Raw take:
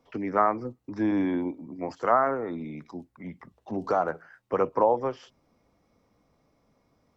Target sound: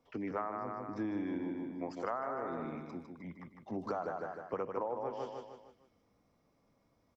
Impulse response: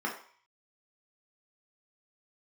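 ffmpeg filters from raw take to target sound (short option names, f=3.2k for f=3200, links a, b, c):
-af "aecho=1:1:153|306|459|612|765:0.501|0.226|0.101|0.0457|0.0206,acompressor=threshold=-27dB:ratio=6,volume=-6.5dB"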